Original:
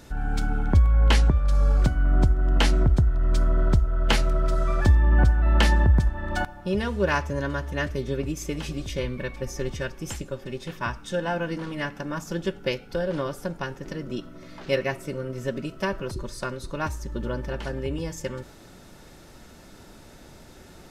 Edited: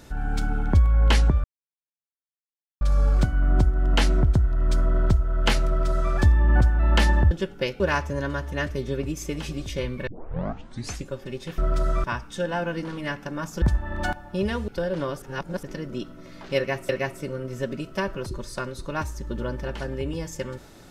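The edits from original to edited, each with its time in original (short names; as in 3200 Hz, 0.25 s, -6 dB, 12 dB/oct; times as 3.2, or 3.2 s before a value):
1.44 insert silence 1.37 s
4.3–4.76 copy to 10.78
5.94–7 swap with 12.36–12.85
9.27 tape start 1.00 s
13.39–13.8 reverse
14.74–15.06 loop, 2 plays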